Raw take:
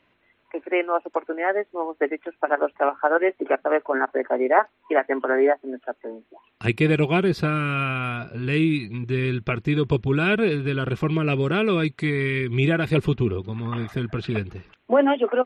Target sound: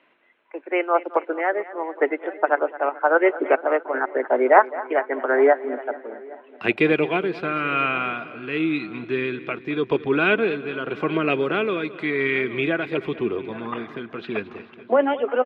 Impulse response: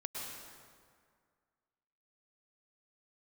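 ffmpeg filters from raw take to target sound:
-filter_complex "[0:a]acrossover=split=210 3700:gain=0.1 1 0.0794[a][b][c];[a][b][c]amix=inputs=3:normalize=0,asplit=2[d][e];[e]adelay=816.3,volume=-19dB,highshelf=f=4k:g=-18.4[f];[d][f]amix=inputs=2:normalize=0,tremolo=f=0.89:d=0.52,lowshelf=f=170:g=-7,asplit=2[g][h];[h]aecho=0:1:218|436|654|872|1090:0.141|0.0805|0.0459|0.0262|0.0149[i];[g][i]amix=inputs=2:normalize=0,volume=5dB"

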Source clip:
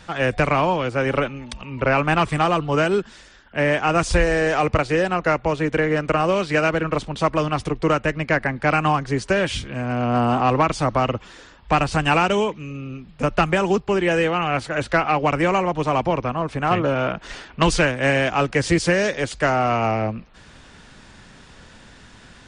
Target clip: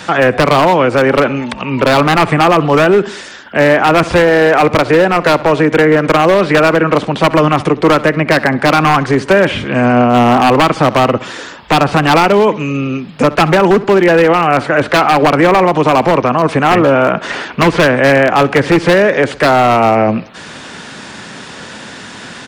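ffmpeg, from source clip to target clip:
-filter_complex "[0:a]acrossover=split=2900[a][b];[b]acompressor=threshold=-45dB:ratio=4:attack=1:release=60[c];[a][c]amix=inputs=2:normalize=0,highpass=180,acrossover=split=2600[d][e];[e]acompressor=threshold=-46dB:ratio=6[f];[d][f]amix=inputs=2:normalize=0,aeval=exprs='0.188*(abs(mod(val(0)/0.188+3,4)-2)-1)':c=same,asplit=2[g][h];[h]adelay=65,lowpass=f=4k:p=1,volume=-22dB,asplit=2[i][j];[j]adelay=65,lowpass=f=4k:p=1,volume=0.48,asplit=2[k][l];[l]adelay=65,lowpass=f=4k:p=1,volume=0.48[m];[g][i][k][m]amix=inputs=4:normalize=0,alimiter=level_in=19.5dB:limit=-1dB:release=50:level=0:latency=1,volume=-1.5dB"

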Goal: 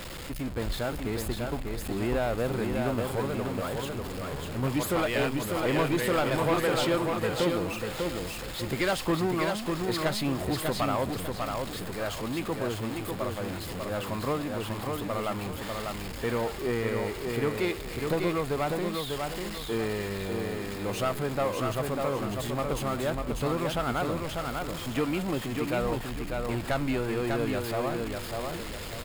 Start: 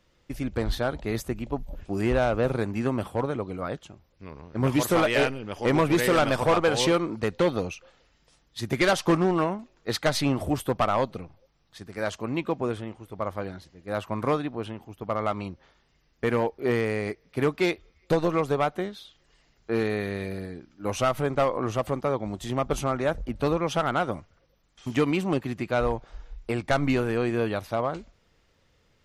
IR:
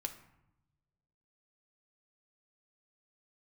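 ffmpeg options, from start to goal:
-filter_complex "[0:a]aeval=exprs='val(0)+0.5*0.0473*sgn(val(0))':c=same,bandreject=f=5.9k:w=5.6,asplit=2[a][b];[b]aecho=0:1:596|1192|1788|2384:0.631|0.208|0.0687|0.0227[c];[a][c]amix=inputs=2:normalize=0,volume=-7dB"

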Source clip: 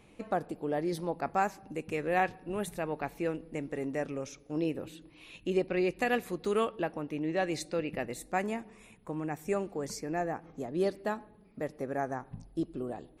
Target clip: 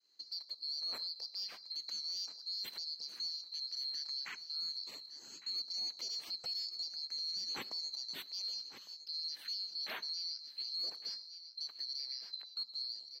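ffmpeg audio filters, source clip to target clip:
-filter_complex "[0:a]afftfilt=real='real(if(lt(b,736),b+184*(1-2*mod(floor(b/184),2)),b),0)':imag='imag(if(lt(b,736),b+184*(1-2*mod(floor(b/184),2)),b),0)':win_size=2048:overlap=0.75,lowshelf=f=82:g=-11,agate=range=-33dB:threshold=-53dB:ratio=3:detection=peak,asoftclip=type=tanh:threshold=-18.5dB,acrossover=split=170 3800:gain=0.224 1 0.224[a][b][c];[a][b][c]amix=inputs=3:normalize=0,dynaudnorm=f=210:g=7:m=7dB,asplit=2[d][e];[e]aecho=0:1:1157|2314|3471:0.133|0.044|0.0145[f];[d][f]amix=inputs=2:normalize=0,alimiter=level_in=6dB:limit=-24dB:level=0:latency=1:release=72,volume=-6dB,volume=-2.5dB"

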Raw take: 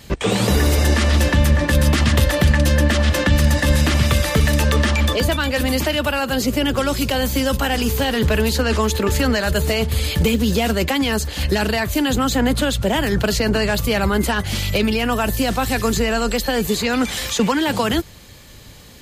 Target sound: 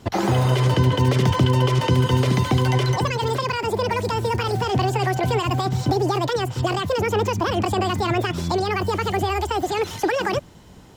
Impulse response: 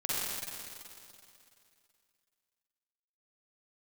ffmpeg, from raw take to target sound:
-af "lowpass=f=1.3k:p=1,asetrate=76440,aresample=44100,volume=-2.5dB"

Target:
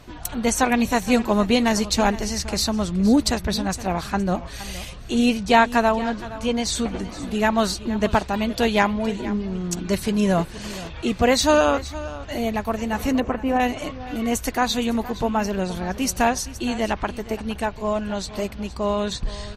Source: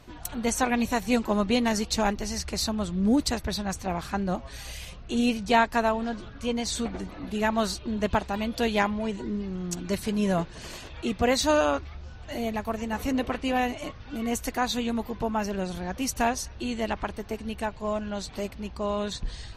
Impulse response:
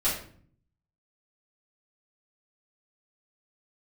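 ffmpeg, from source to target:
-filter_complex "[0:a]asettb=1/sr,asplit=3[a][b][c];[a]atrim=end=13.204[d];[b]atrim=start=13.2:end=13.6,asetpts=PTS-STARTPTS,afade=t=in:d=0.004:c=qsin,afade=t=out:st=0.396:d=0.004:c=qsin,lowpass=1.5k[e];[c]atrim=start=13.596[f];[d][e]acrossfade=d=0.004:c1=hsin:c2=qsin[g];[g][f]acrossfade=d=0.004:c1=qsin:c2=hsin,asplit=2[h][i];[i]aecho=0:1:468:0.158[j];[h][j]amix=inputs=2:normalize=0,volume=5.5dB"

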